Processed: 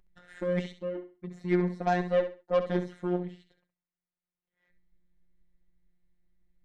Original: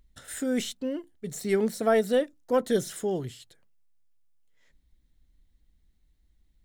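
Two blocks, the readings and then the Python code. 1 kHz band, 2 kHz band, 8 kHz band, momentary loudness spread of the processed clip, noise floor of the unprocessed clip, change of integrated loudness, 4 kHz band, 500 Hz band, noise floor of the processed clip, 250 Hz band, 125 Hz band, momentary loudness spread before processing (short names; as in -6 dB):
+0.5 dB, -2.0 dB, under -20 dB, 13 LU, -67 dBFS, -2.5 dB, -9.5 dB, -3.5 dB, under -85 dBFS, -2.5 dB, +5.0 dB, 12 LU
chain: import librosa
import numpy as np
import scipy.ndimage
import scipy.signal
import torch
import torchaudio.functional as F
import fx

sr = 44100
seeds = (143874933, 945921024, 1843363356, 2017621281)

p1 = scipy.signal.sosfilt(scipy.signal.butter(2, 2100.0, 'lowpass', fs=sr, output='sos'), x)
p2 = fx.rider(p1, sr, range_db=5, speed_s=2.0)
p3 = fx.cheby_harmonics(p2, sr, harmonics=(4, 7), levels_db=(-26, -25), full_scale_db=-13.5)
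p4 = fx.robotise(p3, sr, hz=178.0)
y = p4 + fx.echo_feedback(p4, sr, ms=67, feedback_pct=25, wet_db=-10.5, dry=0)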